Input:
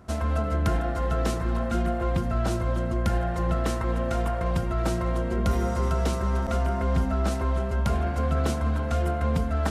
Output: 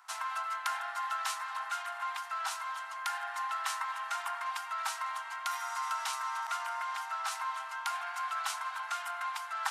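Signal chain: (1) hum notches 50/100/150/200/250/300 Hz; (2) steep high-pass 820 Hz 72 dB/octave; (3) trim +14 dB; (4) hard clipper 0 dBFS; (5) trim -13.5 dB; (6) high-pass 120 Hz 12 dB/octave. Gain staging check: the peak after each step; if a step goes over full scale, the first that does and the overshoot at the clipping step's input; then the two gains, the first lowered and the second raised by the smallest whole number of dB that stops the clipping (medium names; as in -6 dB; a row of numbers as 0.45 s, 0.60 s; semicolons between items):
-14.0 dBFS, -18.0 dBFS, -4.0 dBFS, -4.0 dBFS, -17.5 dBFS, -17.5 dBFS; nothing clips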